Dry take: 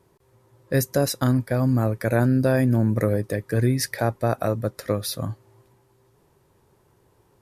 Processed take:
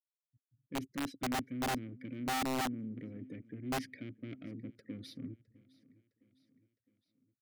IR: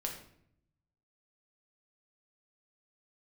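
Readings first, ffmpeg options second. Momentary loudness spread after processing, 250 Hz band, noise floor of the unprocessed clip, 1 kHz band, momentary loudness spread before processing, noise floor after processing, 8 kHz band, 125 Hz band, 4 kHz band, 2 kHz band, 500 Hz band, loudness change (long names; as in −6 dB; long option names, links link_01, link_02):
13 LU, −15.0 dB, −62 dBFS, −8.0 dB, 7 LU, below −85 dBFS, −13.5 dB, −25.0 dB, −9.0 dB, −11.0 dB, −21.0 dB, −16.5 dB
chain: -filter_complex "[0:a]afftfilt=real='re*gte(hypot(re,im),0.0158)':imag='im*gte(hypot(re,im),0.0158)':win_size=1024:overlap=0.75,lowshelf=frequency=480:gain=11.5,areverse,acompressor=threshold=-26dB:ratio=4,areverse,aeval=exprs='(tanh(25.1*val(0)+0.35)-tanh(0.35))/25.1':channel_layout=same,asplit=3[link_01][link_02][link_03];[link_01]bandpass=frequency=270:width_type=q:width=8,volume=0dB[link_04];[link_02]bandpass=frequency=2290:width_type=q:width=8,volume=-6dB[link_05];[link_03]bandpass=frequency=3010:width_type=q:width=8,volume=-9dB[link_06];[link_04][link_05][link_06]amix=inputs=3:normalize=0,aecho=1:1:660|1320|1980|2640:0.075|0.039|0.0203|0.0105,aeval=exprs='(mod(59.6*val(0)+1,2)-1)/59.6':channel_layout=same,volume=5.5dB"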